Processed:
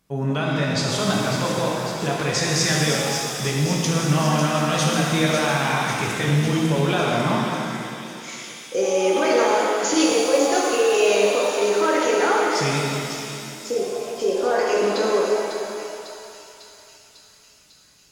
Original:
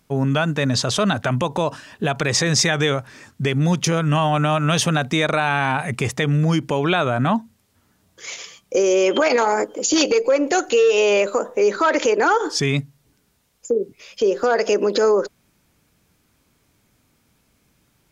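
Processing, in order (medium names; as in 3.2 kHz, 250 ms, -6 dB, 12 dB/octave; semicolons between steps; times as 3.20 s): feedback echo behind a high-pass 549 ms, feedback 69%, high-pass 4 kHz, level -5.5 dB; pitch-shifted reverb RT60 2.5 s, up +7 st, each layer -8 dB, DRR -3.5 dB; trim -7 dB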